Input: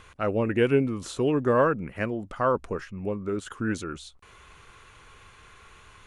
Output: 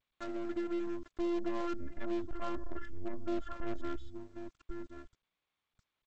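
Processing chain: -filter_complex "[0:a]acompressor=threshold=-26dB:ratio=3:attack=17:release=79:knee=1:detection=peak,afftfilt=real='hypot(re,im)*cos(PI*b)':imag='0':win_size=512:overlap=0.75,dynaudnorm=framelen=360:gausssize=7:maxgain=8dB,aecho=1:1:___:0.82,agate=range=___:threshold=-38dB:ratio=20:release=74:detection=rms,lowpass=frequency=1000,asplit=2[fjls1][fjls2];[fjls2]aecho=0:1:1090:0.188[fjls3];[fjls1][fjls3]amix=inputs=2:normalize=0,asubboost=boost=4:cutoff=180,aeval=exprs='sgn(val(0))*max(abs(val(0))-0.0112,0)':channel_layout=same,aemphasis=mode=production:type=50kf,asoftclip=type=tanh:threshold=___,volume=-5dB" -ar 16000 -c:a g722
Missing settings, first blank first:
3.5, -14dB, -24dB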